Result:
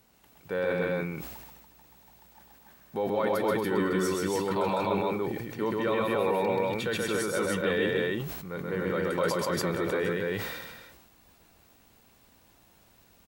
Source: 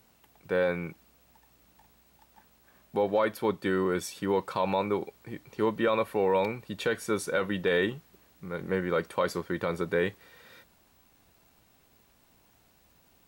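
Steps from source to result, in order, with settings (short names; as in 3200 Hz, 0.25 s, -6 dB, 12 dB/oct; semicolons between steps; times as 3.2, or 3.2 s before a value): in parallel at 0 dB: limiter -24.5 dBFS, peak gain reduction 9 dB; on the sum: loudspeakers at several distances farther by 45 m -2 dB, 80 m -11 dB, 98 m -1 dB; sustainer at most 39 dB/s; gain -7 dB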